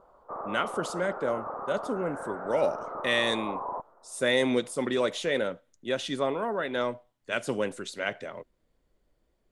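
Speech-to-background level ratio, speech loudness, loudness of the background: 7.0 dB, -30.0 LUFS, -37.0 LUFS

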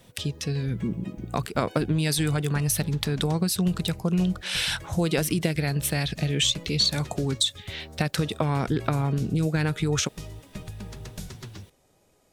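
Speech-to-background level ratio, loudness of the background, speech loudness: 15.5 dB, -41.5 LUFS, -26.0 LUFS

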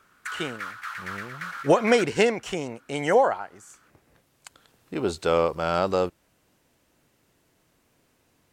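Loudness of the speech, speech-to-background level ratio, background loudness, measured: -24.5 LUFS, 11.5 dB, -36.0 LUFS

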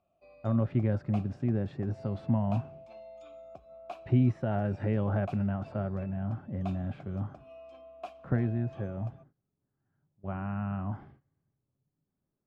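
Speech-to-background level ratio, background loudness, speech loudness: 18.0 dB, -50.0 LUFS, -32.0 LUFS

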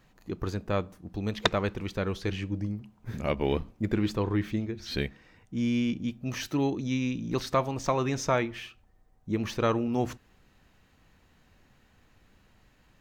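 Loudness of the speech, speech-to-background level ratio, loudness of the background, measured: -31.0 LUFS, 0.0 dB, -31.0 LUFS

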